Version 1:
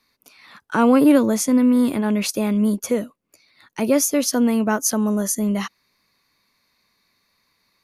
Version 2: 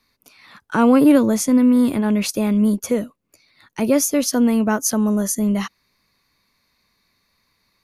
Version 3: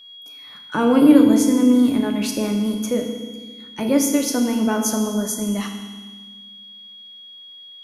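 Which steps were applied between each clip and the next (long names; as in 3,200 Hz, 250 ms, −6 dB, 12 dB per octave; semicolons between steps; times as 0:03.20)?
low-shelf EQ 120 Hz +9 dB
steady tone 3,300 Hz −39 dBFS; feedback delay network reverb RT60 1.4 s, low-frequency decay 1.5×, high-frequency decay 1×, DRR 2.5 dB; level −4 dB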